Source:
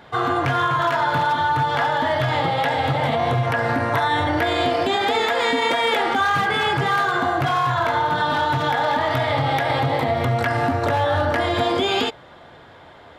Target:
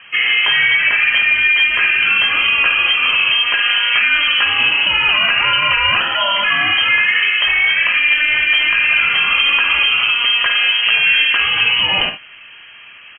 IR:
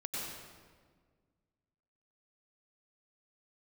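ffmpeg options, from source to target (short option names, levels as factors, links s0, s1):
-filter_complex "[0:a]asettb=1/sr,asplit=3[s0][s1][s2];[s0]atrim=end=6.004[s3];[s1]atrim=start=6:end=6.44,asetpts=PTS-STARTPTS,afade=t=in:d=0.004:c=qsin,afade=t=out:st=0.436:d=0.004:c=qsin,aeval=exprs='val(0)*sin(2*PI*1100*n/s)':c=same[s4];[s2]atrim=start=6.436[s5];[s3][s4]acrossfade=d=0.004:c1=hsin:c2=qsin[s6];[s6][s5]acrossfade=d=0.004:c1=qsin:c2=hsin,aecho=1:1:52|73:0.335|0.2,lowpass=f=2800:t=q:w=0.5098,lowpass=f=2800:t=q:w=0.6013,lowpass=f=2800:t=q:w=0.9,lowpass=f=2800:t=q:w=2.563,afreqshift=-3300,volume=1.88"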